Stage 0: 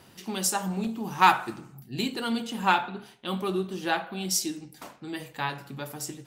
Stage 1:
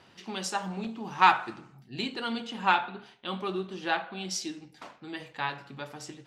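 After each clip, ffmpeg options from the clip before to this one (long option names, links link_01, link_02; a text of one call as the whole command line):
ffmpeg -i in.wav -af "lowpass=4400,lowshelf=frequency=440:gain=-7" out.wav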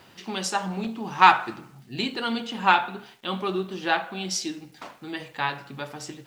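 ffmpeg -i in.wav -af "acrusher=bits=10:mix=0:aa=0.000001,volume=5dB" out.wav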